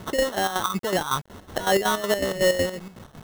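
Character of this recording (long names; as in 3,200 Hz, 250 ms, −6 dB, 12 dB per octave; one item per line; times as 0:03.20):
phaser sweep stages 8, 2.5 Hz, lowest notch 700–2,100 Hz
a quantiser's noise floor 8 bits, dither none
chopped level 5.4 Hz, depth 65%, duty 55%
aliases and images of a low sample rate 2,400 Hz, jitter 0%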